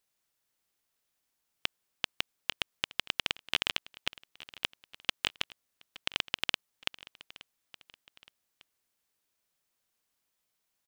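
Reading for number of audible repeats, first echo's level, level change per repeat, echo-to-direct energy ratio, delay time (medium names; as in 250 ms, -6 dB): 2, -19.5 dB, -7.5 dB, -19.0 dB, 869 ms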